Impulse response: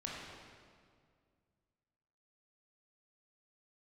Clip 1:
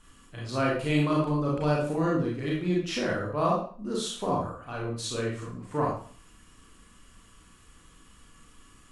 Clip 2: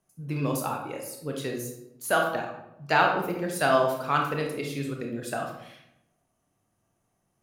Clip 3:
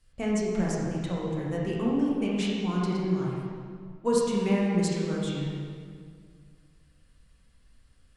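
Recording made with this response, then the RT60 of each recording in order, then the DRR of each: 3; 0.45, 0.85, 2.1 seconds; −4.5, 1.0, −5.0 decibels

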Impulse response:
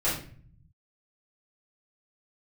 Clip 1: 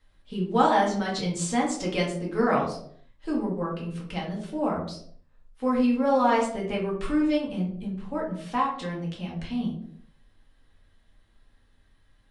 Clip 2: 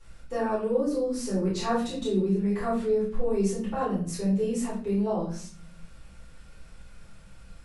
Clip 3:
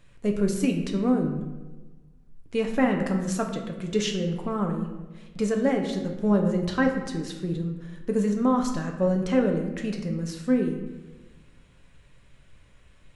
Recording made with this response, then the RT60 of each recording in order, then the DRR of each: 2; 0.65, 0.45, 1.2 seconds; −4.0, −10.0, 2.0 decibels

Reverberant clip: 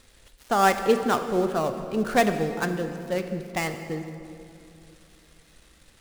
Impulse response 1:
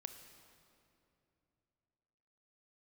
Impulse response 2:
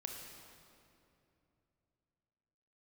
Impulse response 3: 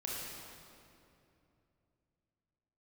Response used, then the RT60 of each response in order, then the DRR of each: 1; 2.9, 2.8, 2.8 seconds; 7.5, 1.5, −5.0 decibels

